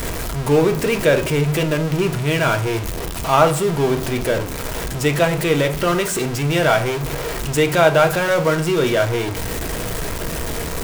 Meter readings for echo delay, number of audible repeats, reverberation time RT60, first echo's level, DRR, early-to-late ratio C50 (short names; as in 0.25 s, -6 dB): none, none, 0.50 s, none, 6.0 dB, 13.5 dB